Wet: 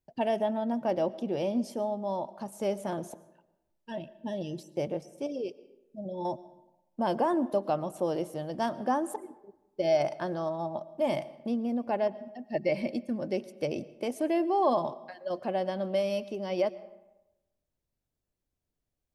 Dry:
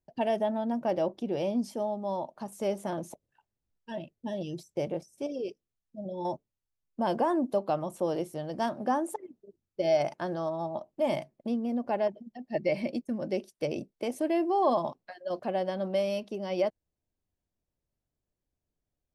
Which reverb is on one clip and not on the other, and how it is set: algorithmic reverb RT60 0.98 s, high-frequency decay 0.6×, pre-delay 75 ms, DRR 18 dB

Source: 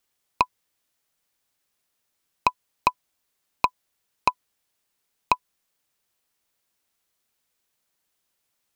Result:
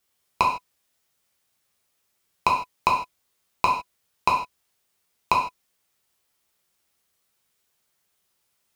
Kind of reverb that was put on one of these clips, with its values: gated-style reverb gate 180 ms falling, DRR -2.5 dB; trim -1 dB

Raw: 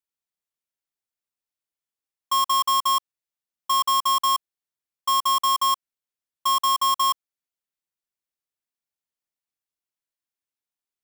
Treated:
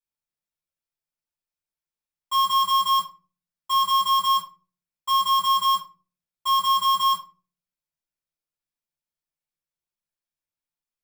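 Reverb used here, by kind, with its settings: simulated room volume 170 m³, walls furnished, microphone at 4.6 m; trim -11 dB

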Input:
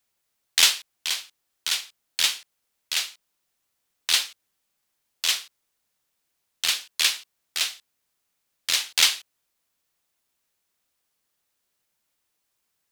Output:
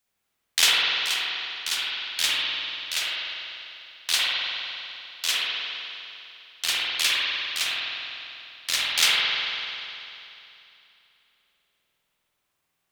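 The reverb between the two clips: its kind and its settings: spring tank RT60 2.9 s, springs 49 ms, chirp 65 ms, DRR -6.5 dB; trim -3 dB

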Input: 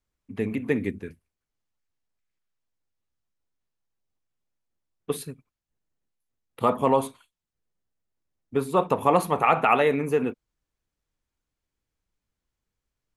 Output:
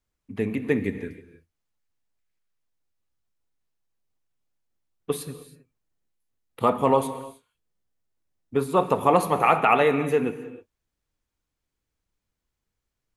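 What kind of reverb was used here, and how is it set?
gated-style reverb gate 340 ms flat, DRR 11.5 dB; trim +1 dB

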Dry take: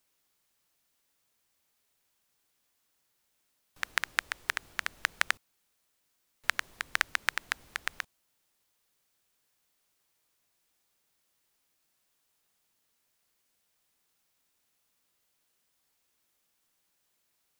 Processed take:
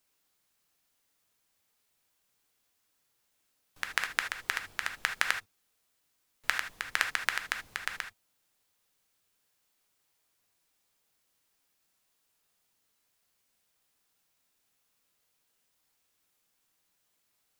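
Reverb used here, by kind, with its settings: gated-style reverb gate 100 ms flat, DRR 5 dB; trim -1 dB

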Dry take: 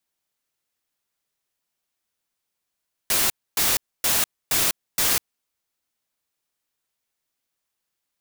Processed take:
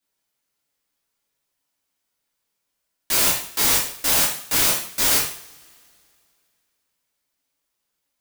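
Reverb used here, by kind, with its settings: two-slope reverb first 0.5 s, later 2.5 s, from -26 dB, DRR -6 dB; trim -3.5 dB

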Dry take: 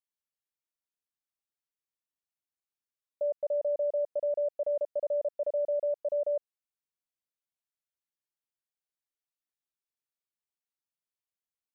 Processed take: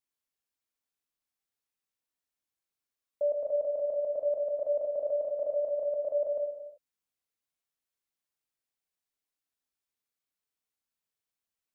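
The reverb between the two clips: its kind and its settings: gated-style reverb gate 410 ms falling, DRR 2 dB; trim +1 dB

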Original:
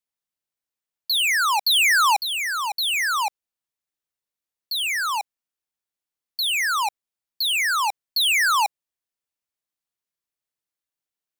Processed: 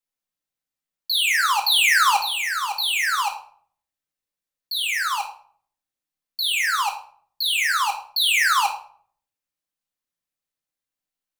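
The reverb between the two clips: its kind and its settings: simulated room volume 660 m³, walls furnished, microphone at 2.1 m; trim -2 dB

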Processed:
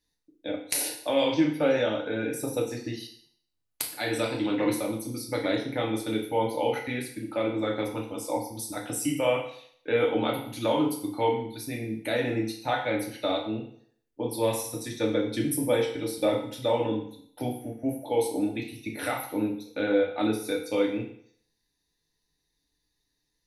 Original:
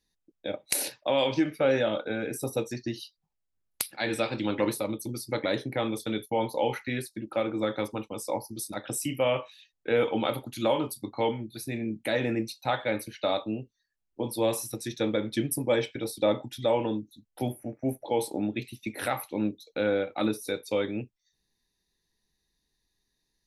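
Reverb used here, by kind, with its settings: FDN reverb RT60 0.61 s, low-frequency decay 0.85×, high-frequency decay 1×, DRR -0.5 dB; trim -2.5 dB

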